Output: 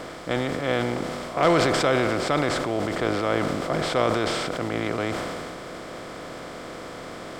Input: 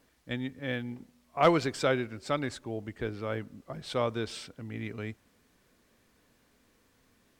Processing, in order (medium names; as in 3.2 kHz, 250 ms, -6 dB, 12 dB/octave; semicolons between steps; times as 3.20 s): spectral levelling over time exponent 0.4; decay stretcher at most 21 dB/s